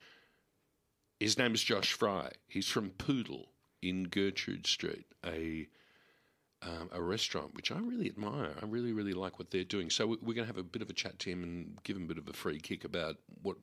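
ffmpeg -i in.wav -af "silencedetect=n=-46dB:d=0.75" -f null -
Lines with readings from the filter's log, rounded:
silence_start: 0.00
silence_end: 1.21 | silence_duration: 1.21
silence_start: 5.65
silence_end: 6.62 | silence_duration: 0.98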